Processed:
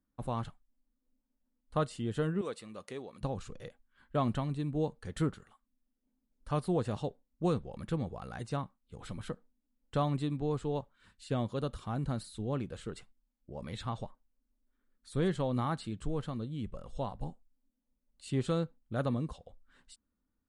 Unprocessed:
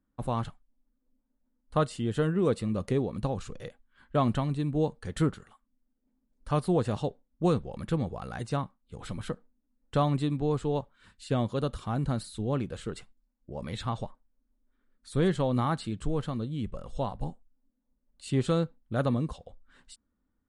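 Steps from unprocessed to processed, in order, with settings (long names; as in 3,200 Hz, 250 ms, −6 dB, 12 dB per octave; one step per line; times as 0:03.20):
0:02.41–0:03.21: high-pass filter 1,000 Hz 6 dB per octave
level −5 dB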